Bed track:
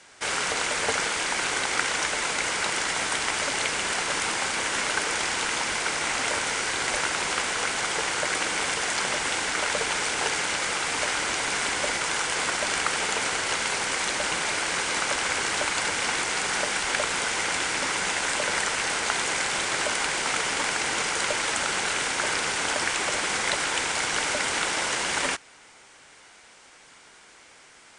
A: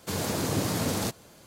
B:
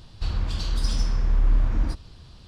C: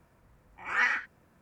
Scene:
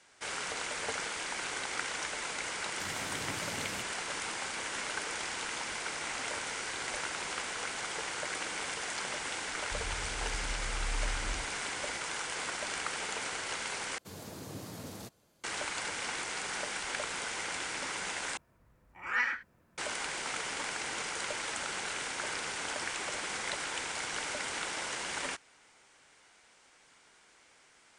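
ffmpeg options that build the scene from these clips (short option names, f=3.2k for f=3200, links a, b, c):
-filter_complex "[1:a]asplit=2[a][b];[0:a]volume=-10.5dB[c];[3:a]equalizer=f=790:w=5.5:g=-2.5[d];[c]asplit=3[e][f][g];[e]atrim=end=13.984[h];[b]atrim=end=1.46,asetpts=PTS-STARTPTS,volume=-16dB[i];[f]atrim=start=15.436:end=18.374[j];[d]atrim=end=1.41,asetpts=PTS-STARTPTS,volume=-4dB[k];[g]atrim=start=19.776[l];[a]atrim=end=1.46,asetpts=PTS-STARTPTS,volume=-16dB,afade=t=in:d=0.004:c=hsin,afade=t=out:st=1.456:d=0.004:c=hsin,adelay=2720[m];[2:a]atrim=end=2.47,asetpts=PTS-STARTPTS,volume=-16dB,afade=t=in:d=0.004:c=hsin,afade=t=out:st=2.466:d=0.004:c=hsin,adelay=9500[n];[h][i]acrossfade=d=0.004:c1=hsin:c2=hsin[o];[o][j]acrossfade=d=0.004:c1=hsin:c2=hsin[p];[p][k]acrossfade=d=0.004:c1=hsin:c2=hsin[q];[q][l]acrossfade=d=0.004:c1=hsin:c2=hsin[r];[r][m][n]amix=inputs=3:normalize=0"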